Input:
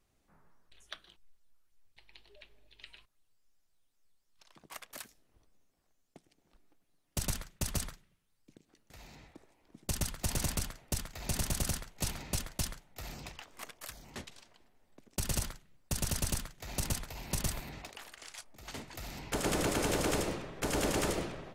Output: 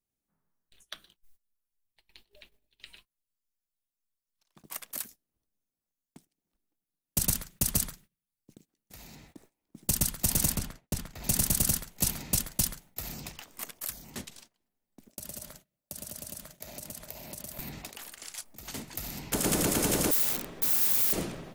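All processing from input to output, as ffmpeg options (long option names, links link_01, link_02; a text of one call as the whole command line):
ffmpeg -i in.wav -filter_complex "[0:a]asettb=1/sr,asplit=3[link_01][link_02][link_03];[link_01]atrim=end=10.574[link_04];[link_02]atrim=start=10.57:end=11.24,asetpts=PTS-STARTPTS,afade=type=in:duration=0.004:curve=qsin,afade=type=out:start_time=0.666:duration=0.004:curve=qsin,lowpass=frequency=2600:poles=1,agate=range=-33dB:threshold=-51dB:ratio=3:release=100:detection=peak[link_05];[link_03]atrim=start=11.236[link_06];[link_04][link_05]acrossfade=duration=0.004:curve1=hsin:curve2=qsin[link_07];[link_07][link_06]acrossfade=duration=0.004:curve1=qsin:curve2=hsin,asettb=1/sr,asplit=3[link_08][link_09][link_10];[link_08]atrim=end=15.094[link_11];[link_09]atrim=start=15.09:end=17.59,asetpts=PTS-STARTPTS,afade=type=in:duration=0.004:curve=qsin,afade=type=out:start_time=2.496:duration=0.004:curve=qsin,highpass=frequency=86:poles=1,equalizer=frequency=610:width_type=o:width=0.3:gain=14.5,acompressor=threshold=-44dB:ratio=16:attack=3.2:release=140:knee=1:detection=peak[link_12];[link_10]atrim=start=17.586[link_13];[link_11][link_12]acrossfade=duration=0.004:curve1=hsin:curve2=qsin[link_14];[link_14][link_13]acrossfade=duration=0.004:curve1=qsin:curve2=hsin,asettb=1/sr,asplit=3[link_15][link_16][link_17];[link_15]atrim=end=20.114[link_18];[link_16]atrim=start=20.11:end=21.13,asetpts=PTS-STARTPTS,afade=type=in:duration=0.004:curve=qsin,afade=type=out:start_time=1.016:duration=0.004:curve=qsin,equalizer=frequency=130:width_type=o:width=0.78:gain=-8.5,aeval=exprs='(mod(53.1*val(0)+1,2)-1)/53.1':channel_layout=same[link_19];[link_17]atrim=start=21.126[link_20];[link_18][link_19]acrossfade=duration=0.004:curve1=hsin:curve2=qsin[link_21];[link_21][link_20]acrossfade=duration=0.004:curve1=qsin:curve2=hsin,equalizer=frequency=200:width_type=o:width=1.5:gain=7,agate=range=-19dB:threshold=-56dB:ratio=16:detection=peak,aemphasis=mode=production:type=50fm" out.wav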